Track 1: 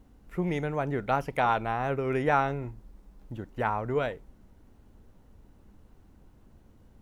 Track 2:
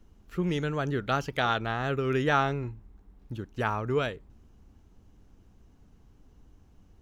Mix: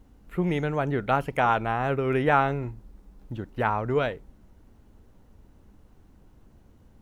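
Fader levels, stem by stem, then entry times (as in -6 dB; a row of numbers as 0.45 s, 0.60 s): +1.0 dB, -8.0 dB; 0.00 s, 0.00 s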